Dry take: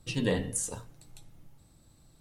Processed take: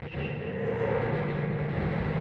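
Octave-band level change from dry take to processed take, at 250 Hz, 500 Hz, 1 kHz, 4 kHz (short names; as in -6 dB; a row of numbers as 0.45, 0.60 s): +4.0, +7.0, +12.0, -5.5 dB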